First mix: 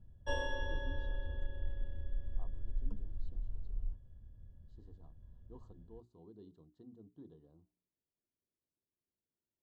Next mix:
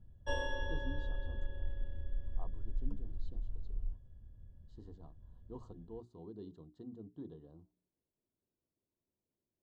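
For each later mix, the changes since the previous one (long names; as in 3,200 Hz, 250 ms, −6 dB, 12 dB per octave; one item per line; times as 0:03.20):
speech +7.0 dB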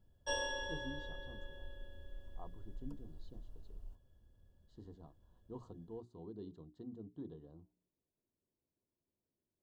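background: add bass and treble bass −12 dB, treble +14 dB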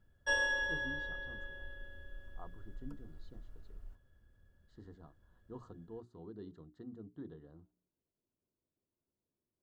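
master: add flat-topped bell 1,700 Hz +11 dB 1.1 octaves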